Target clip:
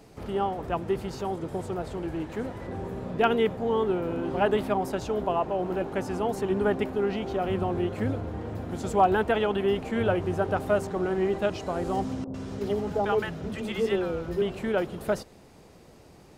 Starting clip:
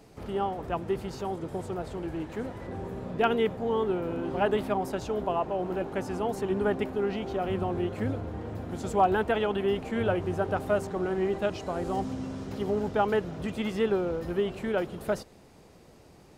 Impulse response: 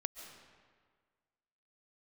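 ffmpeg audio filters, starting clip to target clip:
-filter_complex "[0:a]asettb=1/sr,asplit=3[s0][s1][s2];[s0]atrim=end=12.244[s3];[s1]atrim=start=12.24:end=14.42,asetpts=PTS-STARTPTS,afade=t=in:d=0.004:c=qsin,afade=t=out:st=2.176:d=0.004:c=qsin,acrossover=split=240|830[s4][s5][s6];[s4]adelay=30[s7];[s6]adelay=100[s8];[s7][s5][s8]amix=inputs=3:normalize=0,atrim=end_sample=96138[s9];[s2]atrim=start=14.416[s10];[s3][s9]acrossfade=d=0.004:c1=hsin:c2=qsin[s11];[s11][s10]acrossfade=d=0.004:c1=qsin:c2=hsin,volume=1.26"

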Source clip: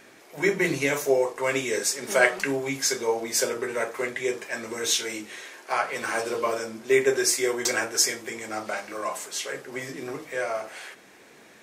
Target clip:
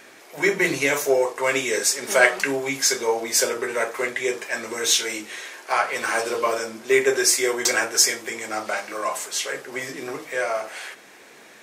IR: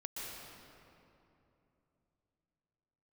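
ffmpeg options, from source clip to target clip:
-filter_complex "[0:a]asplit=2[s0][s1];[s1]asoftclip=type=tanh:threshold=0.126,volume=0.335[s2];[s0][s2]amix=inputs=2:normalize=0,lowshelf=f=280:g=-9,volume=1.41"

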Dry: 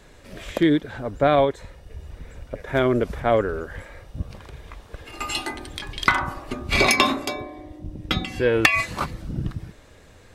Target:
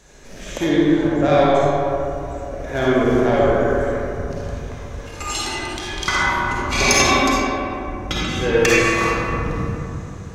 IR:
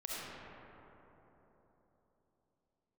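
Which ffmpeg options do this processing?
-filter_complex "[0:a]acontrast=83,equalizer=f=6300:w=2.6:g=13[s0];[1:a]atrim=start_sample=2205,asetrate=57330,aresample=44100[s1];[s0][s1]afir=irnorm=-1:irlink=0,volume=0.794"

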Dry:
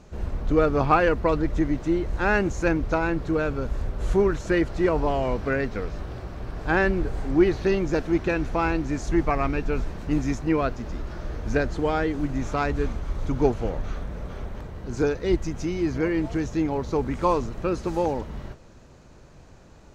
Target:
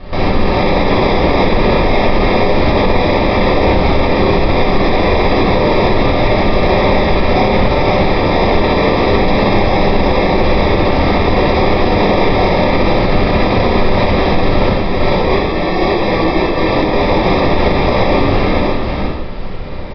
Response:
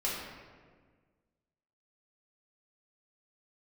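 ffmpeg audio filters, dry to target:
-filter_complex "[0:a]asettb=1/sr,asplit=3[s0][s1][s2];[s0]atrim=end=14.684[s3];[s1]atrim=start=14.68:end=16.96,asetpts=PTS-STARTPTS,afade=t=in:d=0.004:c=qsin,afade=t=out:st=2.276:d=0.004:c=qsin,highpass=f=1200:p=1[s4];[s2]atrim=start=16.956[s5];[s3][s4]acrossfade=d=0.004:c1=hsin:c2=qsin[s6];[s6][s5]acrossfade=d=0.004:c1=qsin:c2=hsin,acompressor=threshold=0.0355:ratio=3,acrusher=samples=30:mix=1:aa=0.000001,aeval=exprs='(mod(33.5*val(0)+1,2)-1)/33.5':c=same,aecho=1:1:64|539:0.631|0.668[s7];[1:a]atrim=start_sample=2205,afade=t=out:st=0.23:d=0.01,atrim=end_sample=10584[s8];[s7][s8]afir=irnorm=-1:irlink=0,aresample=11025,aresample=44100,alimiter=level_in=7.94:limit=0.891:release=50:level=0:latency=1,volume=0.891"

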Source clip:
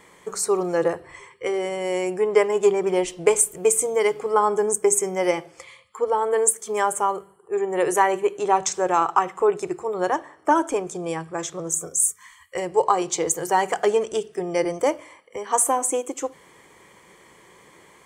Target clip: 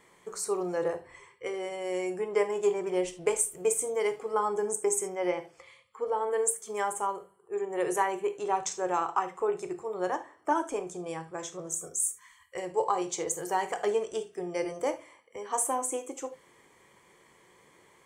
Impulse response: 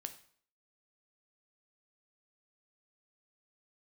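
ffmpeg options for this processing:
-filter_complex "[0:a]asettb=1/sr,asplit=3[s0][s1][s2];[s0]atrim=end=5.084[s3];[s1]atrim=start=5.08:end=6.3,asetpts=PTS-STARTPTS,afade=t=in:d=0.004:c=qsin,afade=t=out:st=1.216:d=0.004:c=qsin,acrossover=split=4000[s4][s5];[s5]acompressor=threshold=0.002:ratio=4:attack=1:release=60[s6];[s4][s6]amix=inputs=2:normalize=0[s7];[s2]atrim=start=6.296[s8];[s3][s7]acrossfade=d=0.004:c1=hsin:c2=qsin[s9];[s9][s8]acrossfade=d=0.004:c1=qsin:c2=hsin[s10];[1:a]atrim=start_sample=2205,atrim=end_sample=3969[s11];[s10][s11]afir=irnorm=-1:irlink=0,volume=0.531"

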